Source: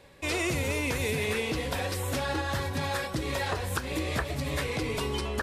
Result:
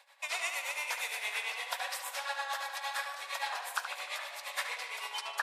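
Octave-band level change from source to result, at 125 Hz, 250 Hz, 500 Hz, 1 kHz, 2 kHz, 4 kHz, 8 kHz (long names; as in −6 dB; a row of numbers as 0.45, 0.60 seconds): below −40 dB, below −40 dB, −16.5 dB, −2.5 dB, −2.5 dB, −3.0 dB, −3.5 dB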